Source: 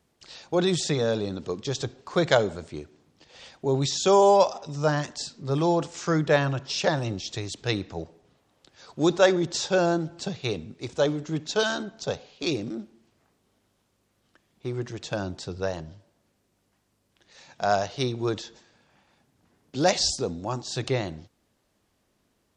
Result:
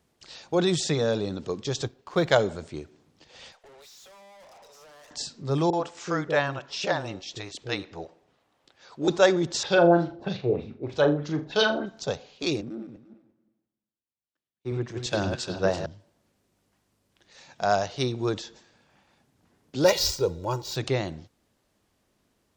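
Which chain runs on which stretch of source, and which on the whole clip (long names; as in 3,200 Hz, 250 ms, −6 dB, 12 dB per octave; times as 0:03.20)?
0:01.87–0:02.34: mu-law and A-law mismatch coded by A + high-shelf EQ 6,300 Hz −7.5 dB
0:03.52–0:05.11: Butterworth high-pass 430 Hz 96 dB per octave + downward compressor 4 to 1, threshold −36 dBFS + tube saturation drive 50 dB, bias 0.4
0:05.70–0:09.08: bass and treble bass −9 dB, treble −6 dB + multiband delay without the direct sound lows, highs 30 ms, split 430 Hz
0:09.63–0:11.86: auto-filter low-pass sine 3.2 Hz 470–4,700 Hz + flutter between parallel walls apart 7 metres, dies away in 0.29 s
0:12.61–0:15.86: feedback delay that plays each chunk backwards 175 ms, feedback 47%, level −4.5 dB + echo through a band-pass that steps 107 ms, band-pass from 3,300 Hz, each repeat −0.7 octaves, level −5.5 dB + multiband upward and downward expander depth 100%
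0:19.84–0:20.76: running median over 5 samples + notch filter 1,700 Hz, Q 7.8 + comb filter 2.1 ms, depth 82%
whole clip: no processing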